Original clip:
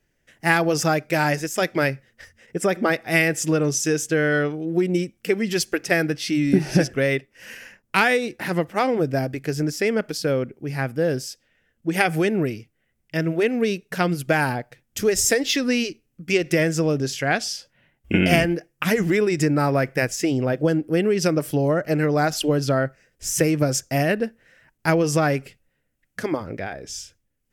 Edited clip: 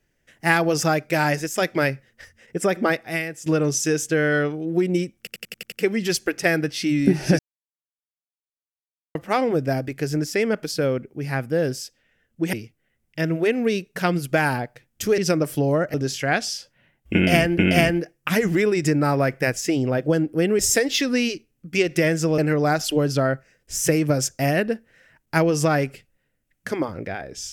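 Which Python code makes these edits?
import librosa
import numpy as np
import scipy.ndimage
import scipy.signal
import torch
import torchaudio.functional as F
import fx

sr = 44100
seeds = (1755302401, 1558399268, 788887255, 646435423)

y = fx.edit(x, sr, fx.fade_out_to(start_s=2.91, length_s=0.55, curve='qua', floor_db=-13.0),
    fx.stutter(start_s=5.18, slice_s=0.09, count=7),
    fx.silence(start_s=6.85, length_s=1.76),
    fx.cut(start_s=11.99, length_s=0.5),
    fx.swap(start_s=15.14, length_s=1.79, other_s=21.14, other_length_s=0.76),
    fx.repeat(start_s=18.13, length_s=0.44, count=2), tone=tone)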